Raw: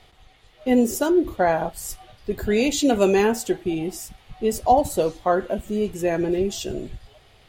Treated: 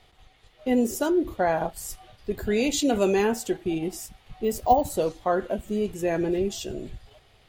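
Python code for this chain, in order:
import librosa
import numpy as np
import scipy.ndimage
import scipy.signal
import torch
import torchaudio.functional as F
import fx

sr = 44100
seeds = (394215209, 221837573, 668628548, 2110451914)

p1 = fx.level_steps(x, sr, step_db=13)
p2 = x + (p1 * librosa.db_to_amplitude(-1.0))
p3 = fx.resample_bad(p2, sr, factor=2, down='none', up='hold', at=(4.44, 4.9))
y = p3 * librosa.db_to_amplitude(-6.5)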